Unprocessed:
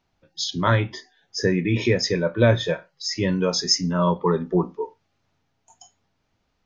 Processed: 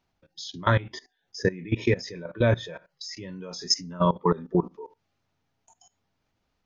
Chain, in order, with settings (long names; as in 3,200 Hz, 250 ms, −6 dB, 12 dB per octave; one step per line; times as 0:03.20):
output level in coarse steps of 19 dB